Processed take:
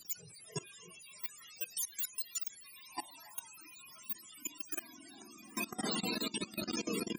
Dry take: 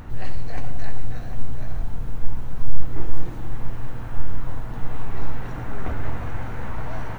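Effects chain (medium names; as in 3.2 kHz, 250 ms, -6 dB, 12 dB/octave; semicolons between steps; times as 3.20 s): spectrum inverted on a logarithmic axis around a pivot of 550 Hz; spectral noise reduction 21 dB; level held to a coarse grid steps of 19 dB; trim +2.5 dB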